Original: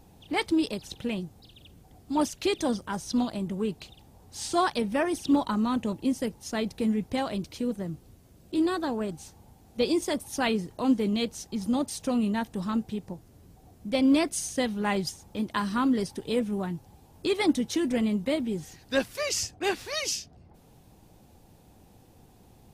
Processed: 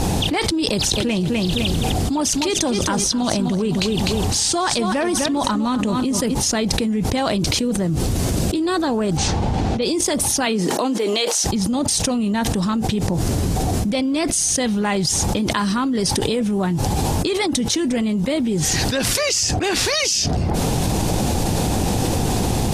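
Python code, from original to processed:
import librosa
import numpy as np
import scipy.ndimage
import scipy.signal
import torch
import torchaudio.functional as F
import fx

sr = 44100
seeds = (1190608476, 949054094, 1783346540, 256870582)

y = fx.echo_feedback(x, sr, ms=253, feedback_pct=26, wet_db=-11.0, at=(0.96, 6.33), fade=0.02)
y = fx.lowpass(y, sr, hz=3600.0, slope=12, at=(9.17, 9.82))
y = fx.highpass(y, sr, hz=fx.line((10.45, 150.0), (11.43, 580.0)), slope=24, at=(10.45, 11.43), fade=0.02)
y = scipy.signal.sosfilt(scipy.signal.butter(2, 9300.0, 'lowpass', fs=sr, output='sos'), y)
y = fx.bass_treble(y, sr, bass_db=0, treble_db=5)
y = fx.env_flatten(y, sr, amount_pct=100)
y = F.gain(torch.from_numpy(y), -1.5).numpy()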